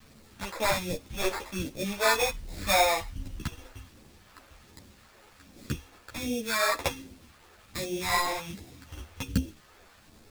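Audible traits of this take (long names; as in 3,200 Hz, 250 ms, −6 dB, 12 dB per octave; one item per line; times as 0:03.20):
aliases and images of a low sample rate 3,000 Hz, jitter 0%
phaser sweep stages 2, 1.3 Hz, lowest notch 150–1,200 Hz
a quantiser's noise floor 10 bits, dither none
a shimmering, thickened sound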